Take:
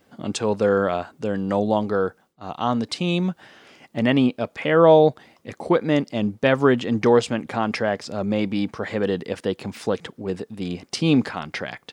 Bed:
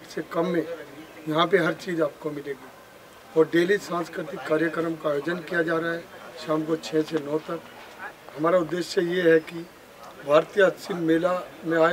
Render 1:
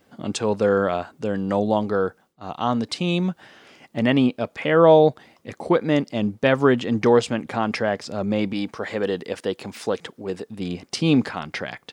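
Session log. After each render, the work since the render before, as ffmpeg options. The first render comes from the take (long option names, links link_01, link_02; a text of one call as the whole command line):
ffmpeg -i in.wav -filter_complex "[0:a]asettb=1/sr,asplit=3[link_01][link_02][link_03];[link_01]atrim=end=8.534[link_04];[link_02]atrim=start=8.53:end=10.47,asetpts=PTS-STARTPTS,afade=type=in:duration=0.004:curve=qsin,afade=type=out:start_time=1.936:duration=0.004:curve=qsin,bass=frequency=250:gain=-6,treble=frequency=4000:gain=2[link_05];[link_03]atrim=start=10.466[link_06];[link_04][link_05]acrossfade=duration=0.004:curve1=hsin:curve2=qsin[link_07];[link_07][link_06]acrossfade=duration=0.004:curve1=qsin:curve2=hsin" out.wav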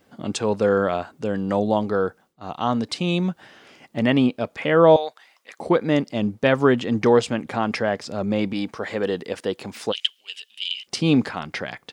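ffmpeg -i in.wav -filter_complex "[0:a]asettb=1/sr,asplit=3[link_01][link_02][link_03];[link_01]atrim=end=4.964[link_04];[link_02]atrim=start=4.96:end=5.59,asetpts=PTS-STARTPTS,afade=type=in:duration=0.004:curve=qsin,afade=type=out:start_time=0.626:duration=0.004:curve=qsin,highpass=1100[link_05];[link_03]atrim=start=5.586[link_06];[link_04][link_05]acrossfade=duration=0.004:curve1=hsin:curve2=qsin[link_07];[link_07][link_06]acrossfade=duration=0.004:curve1=qsin:curve2=hsin,asplit=3[link_08][link_09][link_10];[link_08]afade=type=out:start_time=9.91:duration=0.02[link_11];[link_09]highpass=frequency=3000:width_type=q:width=14,afade=type=in:start_time=9.91:duration=0.02,afade=type=out:start_time=10.86:duration=0.02[link_12];[link_10]afade=type=in:start_time=10.86:duration=0.02[link_13];[link_11][link_12][link_13]amix=inputs=3:normalize=0" out.wav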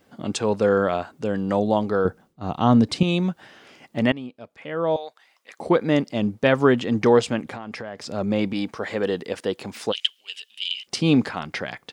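ffmpeg -i in.wav -filter_complex "[0:a]asettb=1/sr,asplit=3[link_01][link_02][link_03];[link_01]atrim=end=2.054[link_04];[link_02]atrim=start=2.05:end=3.03,asetpts=PTS-STARTPTS,afade=type=in:duration=0.004:curve=qsin,afade=type=out:start_time=0.976:duration=0.004:curve=qsin,lowshelf=frequency=370:gain=11.5[link_05];[link_03]atrim=start=3.026[link_06];[link_04][link_05]acrossfade=duration=0.004:curve1=hsin:curve2=qsin[link_07];[link_07][link_06]acrossfade=duration=0.004:curve1=qsin:curve2=hsin,asettb=1/sr,asplit=3[link_08][link_09][link_10];[link_08]atrim=end=7.404[link_11];[link_09]atrim=start=7.4:end=8.04,asetpts=PTS-STARTPTS,afade=type=in:duration=0.004:curve=qsin,afade=type=out:start_time=0.636:duration=0.004:curve=qsin,acompressor=threshold=-29dB:ratio=12:attack=3.2:release=140:knee=1:detection=peak[link_12];[link_10]atrim=start=8.036[link_13];[link_11][link_12]acrossfade=duration=0.004:curve1=hsin:curve2=qsin[link_14];[link_14][link_13]acrossfade=duration=0.004:curve1=qsin:curve2=hsin,asplit=2[link_15][link_16];[link_15]atrim=end=4.12,asetpts=PTS-STARTPTS,afade=type=out:start_time=4.116:duration=0.004:curve=hsin:silence=0.141254[link_17];[link_16]atrim=start=4.12,asetpts=PTS-STARTPTS,afade=type=in:duration=1.59:curve=qua:silence=0.141254[link_18];[link_17][link_18]concat=n=2:v=0:a=1" out.wav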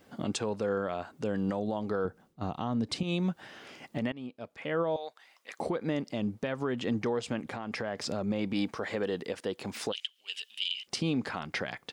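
ffmpeg -i in.wav -af "acompressor=threshold=-19dB:ratio=6,alimiter=limit=-21dB:level=0:latency=1:release=425" out.wav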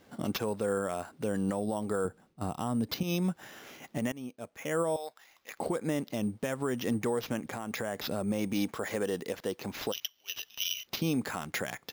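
ffmpeg -i in.wav -af "acrusher=samples=5:mix=1:aa=0.000001" out.wav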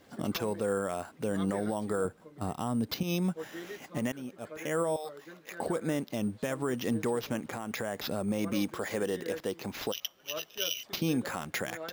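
ffmpeg -i in.wav -i bed.wav -filter_complex "[1:a]volume=-22dB[link_01];[0:a][link_01]amix=inputs=2:normalize=0" out.wav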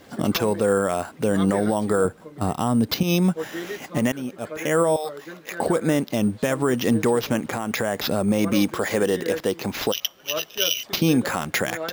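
ffmpeg -i in.wav -af "volume=10.5dB" out.wav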